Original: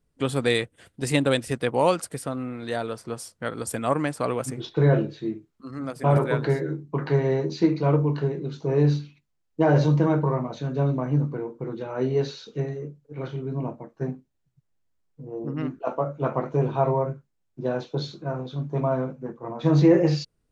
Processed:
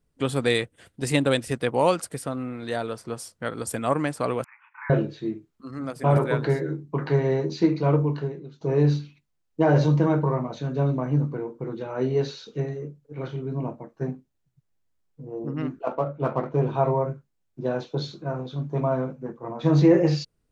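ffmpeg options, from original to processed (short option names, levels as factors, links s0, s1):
-filter_complex "[0:a]asettb=1/sr,asplit=3[s0][s1][s2];[s0]atrim=end=4.444[s3];[s1]atrim=start=4.44:end=4.9,asetpts=PTS-STARTPTS,afade=t=in:d=0.004:c=qsin,afade=t=out:st=0.456:d=0.004:c=qsin,asuperpass=centerf=1500:order=20:qfactor=0.88[s4];[s2]atrim=start=4.896[s5];[s3][s4]acrossfade=d=0.004:c1=hsin:c2=qsin[s6];[s6][s5]acrossfade=d=0.004:c1=qsin:c2=hsin,asettb=1/sr,asplit=3[s7][s8][s9];[s7]atrim=end=15.844[s10];[s8]atrim=start=15.84:end=16.67,asetpts=PTS-STARTPTS,afade=t=in:d=0.004:c=qsin,afade=t=out:st=0.826:d=0.004:c=qsin,adynamicsmooth=sensitivity=8:basefreq=3300[s11];[s9]atrim=start=16.666[s12];[s10][s11]acrossfade=d=0.004:c1=hsin:c2=qsin[s13];[s13][s12]acrossfade=d=0.004:c1=qsin:c2=hsin,asplit=2[s14][s15];[s14]atrim=end=8.61,asetpts=PTS-STARTPTS,afade=t=out:st=8.01:d=0.6:silence=0.1[s16];[s15]atrim=start=8.61,asetpts=PTS-STARTPTS,afade=t=in:d=0.004:c=hsin:silence=0.1[s17];[s16][s17]concat=n=2:v=0:a=1"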